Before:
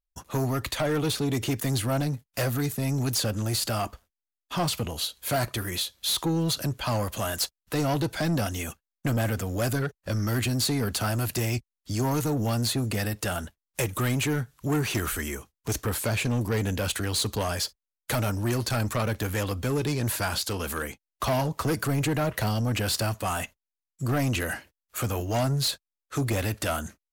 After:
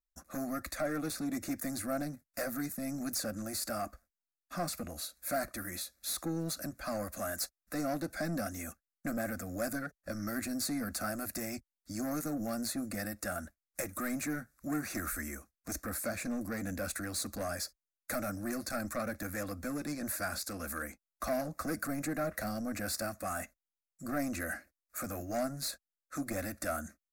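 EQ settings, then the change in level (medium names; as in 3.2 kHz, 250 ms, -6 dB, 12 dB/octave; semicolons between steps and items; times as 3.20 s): static phaser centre 620 Hz, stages 8; -5.5 dB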